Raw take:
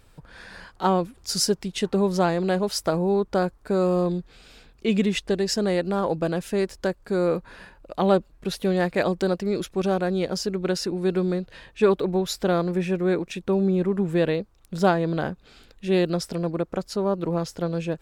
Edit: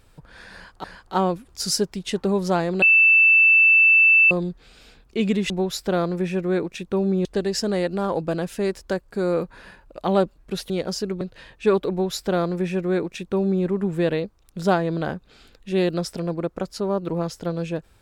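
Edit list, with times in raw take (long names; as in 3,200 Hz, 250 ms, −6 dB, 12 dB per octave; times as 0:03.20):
0:00.53–0:00.84: repeat, 2 plays
0:02.51–0:04.00: beep over 2,650 Hz −11 dBFS
0:08.64–0:10.14: remove
0:10.65–0:11.37: remove
0:12.06–0:13.81: duplicate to 0:05.19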